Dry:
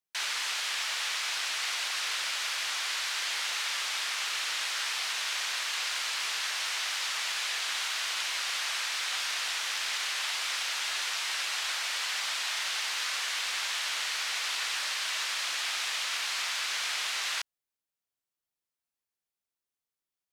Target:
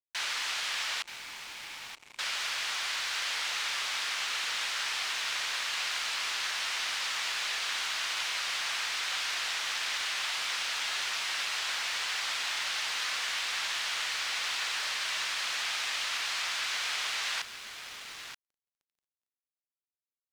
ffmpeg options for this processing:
-filter_complex "[0:a]asettb=1/sr,asplit=3[a][b][c];[a]atrim=end=1.024[d];[b]atrim=start=1.02:end=2.19,asetpts=PTS-STARTPTS,afade=t=in:d=0.004:c=qsin,afade=t=out:st=1.166:d=0.004:c=qsin,asplit=3[e][f][g];[e]bandpass=f=300:t=q:w=8,volume=0dB[h];[f]bandpass=f=870:t=q:w=8,volume=-6dB[i];[g]bandpass=f=2.24k:t=q:w=8,volume=-9dB[j];[h][i][j]amix=inputs=3:normalize=0[k];[c]atrim=start=2.186[l];[d][k]acrossfade=d=0.004:c1=hsin:c2=qsin[m];[m][l]acrossfade=d=0.004:c1=qsin:c2=hsin,aecho=1:1:928|1856|2784:0.282|0.0564|0.0113,acrusher=bits=6:mix=0:aa=0.5,highshelf=f=9.2k:g=-9"

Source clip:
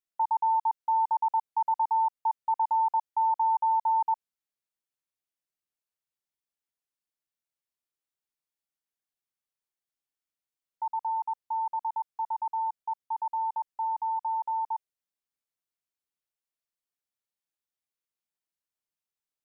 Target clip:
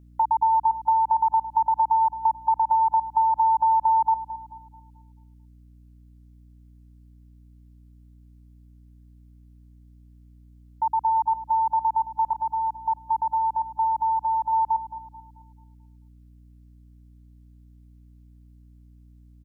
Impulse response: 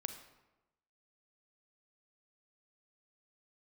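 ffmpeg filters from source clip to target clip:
-filter_complex "[0:a]asettb=1/sr,asplit=3[a][b][c];[a]atrim=end=12.334[d];[b]atrim=start=12.33:end=14.53,asetpts=PTS-STARTPTS,afade=t=in:d=0.004:c=qsin,afade=t=out:st=2.196:d=0.004:c=qsin,adynamicequalizer=threshold=0.00891:dfrequency=1000:dqfactor=0.78:tfrequency=1000:tqfactor=0.78:attack=5:release=100:ratio=0.375:range=2.5:mode=cutabove:tftype=bell[e];[c]atrim=start=14.526[f];[d][e]acrossfade=d=0.004:c1=hsin:c2=qsin[g];[g][f]acrossfade=d=0.004:c1=qsin:c2=hsin,acompressor=threshold=-27dB:ratio=6,aeval=exprs='val(0)+0.00126*(sin(2*PI*60*n/s)+sin(2*PI*2*60*n/s)/2+sin(2*PI*3*60*n/s)/3+sin(2*PI*4*60*n/s)/4+sin(2*PI*5*60*n/s)/5)':c=same,asplit=2[h][i];[i]adelay=219,lowpass=f=870:p=1,volume=-11.5dB,asplit=2[j][k];[k]adelay=219,lowpass=f=870:p=1,volume=0.54,asplit=2[l][m];[m]adelay=219,lowpass=f=870:p=1,volume=0.54,asplit=2[n][o];[o]adelay=219,lowpass=f=870:p=1,volume=0.54,asplit=2[p][q];[q]adelay=219,lowpass=f=870:p=1,volume=0.54,asplit=2[r][s];[s]adelay=219,lowpass=f=870:p=1,volume=0.54[t];[h][j][l][n][p][r][t]amix=inputs=7:normalize=0,volume=8.5dB"

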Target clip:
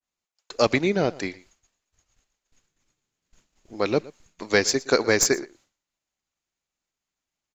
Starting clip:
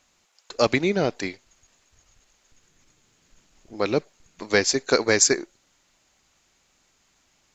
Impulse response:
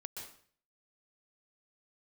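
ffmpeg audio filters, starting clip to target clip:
-filter_complex "[0:a]agate=range=-33dB:threshold=-51dB:ratio=3:detection=peak,acrossover=split=3100[a][b];[b]aeval=exprs='clip(val(0),-1,0.188)':c=same[c];[a][c]amix=inputs=2:normalize=0,aecho=1:1:117:0.0944,adynamicequalizer=threshold=0.0141:dfrequency=2300:dqfactor=0.7:tfrequency=2300:tqfactor=0.7:attack=5:release=100:ratio=0.375:range=1.5:mode=cutabove:tftype=highshelf"

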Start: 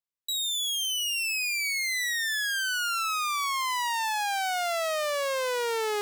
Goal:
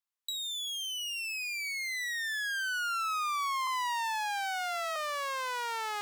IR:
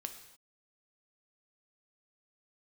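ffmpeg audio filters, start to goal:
-filter_complex "[0:a]lowshelf=f=630:t=q:w=1.5:g=-13.5,acrossover=split=1200|6600[a][b][c];[a]acompressor=threshold=-35dB:ratio=4[d];[b]acompressor=threshold=-37dB:ratio=4[e];[c]acompressor=threshold=-48dB:ratio=4[f];[d][e][f]amix=inputs=3:normalize=0,asettb=1/sr,asplit=3[g][h][i];[g]atrim=end=3.674[j];[h]atrim=start=3.67:end=4.96,asetpts=PTS-STARTPTS,afade=t=in:d=0.004:c=qsin,afade=t=out:st=1.286:d=0.004:c=qsin,afreqshift=24[k];[i]atrim=start=4.956[l];[j][k]acrossfade=d=0.004:c1=hsin:c2=qsin[m];[m][l]acrossfade=d=0.004:c1=qsin:c2=hsin"

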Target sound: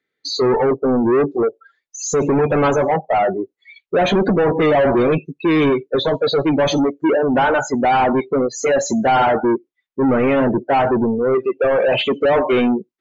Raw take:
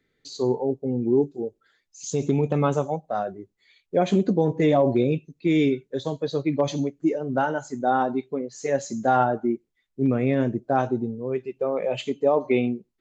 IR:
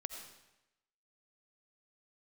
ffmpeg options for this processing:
-filter_complex "[0:a]asplit=2[a][b];[b]highpass=f=720:p=1,volume=32dB,asoftclip=type=tanh:threshold=-8dB[c];[a][c]amix=inputs=2:normalize=0,lowpass=f=3.1k:p=1,volume=-6dB,afftdn=nr=27:nf=-24"

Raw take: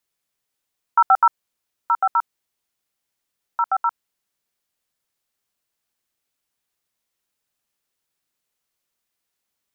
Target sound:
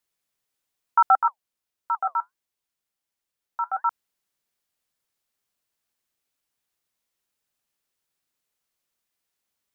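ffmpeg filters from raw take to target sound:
-filter_complex "[0:a]asettb=1/sr,asplit=3[a][b][c];[a]atrim=end=1.154[d];[b]atrim=start=1.15:end=3.85,asetpts=PTS-STARTPTS,afade=t=in:d=0.004:c=qsin,afade=t=out:st=2.696:d=0.004:c=qsin,flanger=delay=1.8:depth=5.9:regen=-68:speed=1.4:shape=sinusoidal[e];[c]atrim=start=3.846[f];[d][e]acrossfade=d=0.004:c1=hsin:c2=qsin[g];[g][f]acrossfade=d=0.004:c1=qsin:c2=hsin,volume=-2dB"

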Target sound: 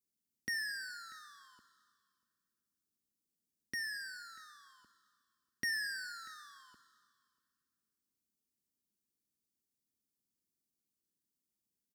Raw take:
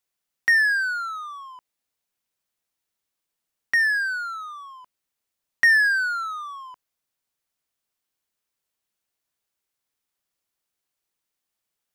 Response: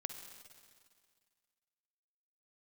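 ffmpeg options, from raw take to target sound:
-filter_complex "[0:a]firequalizer=gain_entry='entry(140,0);entry(220,7);entry(740,-26);entry(4800,-10)':delay=0.05:min_phase=1,aecho=1:1:640:0.0631,asplit=2[a][b];[1:a]atrim=start_sample=2205,lowshelf=f=180:g=-7,highshelf=f=5.1k:g=7[c];[b][c]afir=irnorm=-1:irlink=0,volume=2.5dB[d];[a][d]amix=inputs=2:normalize=0,adynamicequalizer=threshold=0.00282:dfrequency=2800:dqfactor=2.1:tfrequency=2800:tqfactor=2.1:attack=5:release=100:ratio=0.375:range=3:mode=boostabove:tftype=bell,highpass=46,volume=-6dB"

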